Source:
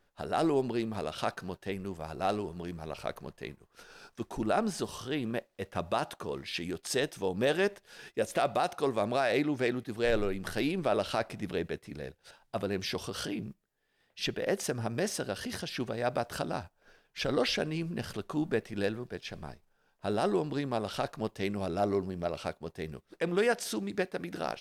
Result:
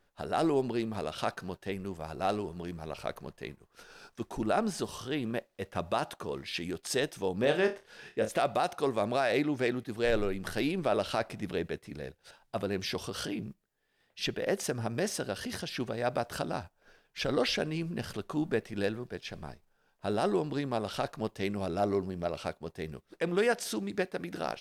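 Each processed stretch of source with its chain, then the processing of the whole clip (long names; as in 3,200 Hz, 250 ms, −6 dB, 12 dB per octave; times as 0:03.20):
0:07.41–0:08.29: high-shelf EQ 6,400 Hz −10 dB + flutter between parallel walls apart 4.8 metres, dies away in 0.24 s
whole clip: no processing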